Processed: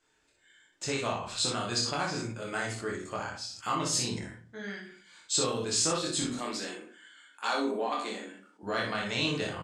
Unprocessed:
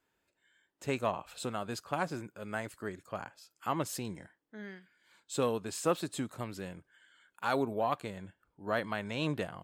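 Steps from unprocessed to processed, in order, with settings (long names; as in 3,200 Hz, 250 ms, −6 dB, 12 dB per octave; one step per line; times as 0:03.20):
0:06.22–0:08.63: Chebyshev high-pass filter 210 Hz, order 6
rectangular room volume 33 cubic metres, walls mixed, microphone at 0.5 metres
downward compressor 2.5 to 1, threshold −34 dBFS, peak gain reduction 9 dB
low-pass filter 8,000 Hz 24 dB per octave
high-shelf EQ 2,800 Hz +11.5 dB
ambience of single reflections 25 ms −3.5 dB, 61 ms −4.5 dB
dynamic equaliser 4,800 Hz, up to +6 dB, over −51 dBFS, Q 1.5
level that may fall only so fast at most 77 dB per second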